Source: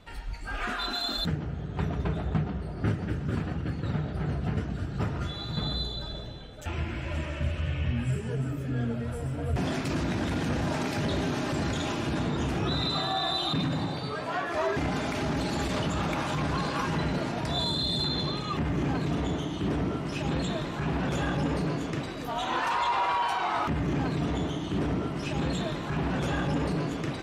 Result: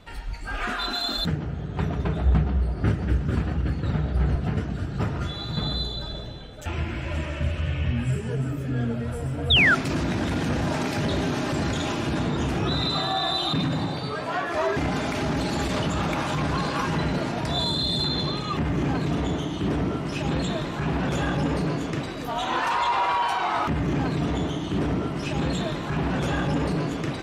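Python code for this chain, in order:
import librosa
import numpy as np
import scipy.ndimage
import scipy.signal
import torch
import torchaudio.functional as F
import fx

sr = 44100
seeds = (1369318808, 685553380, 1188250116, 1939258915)

y = fx.peak_eq(x, sr, hz=64.0, db=14.0, octaves=0.33, at=(2.19, 4.36))
y = fx.spec_paint(y, sr, seeds[0], shape='fall', start_s=9.5, length_s=0.25, low_hz=1300.0, high_hz=3900.0, level_db=-21.0)
y = y * 10.0 ** (3.5 / 20.0)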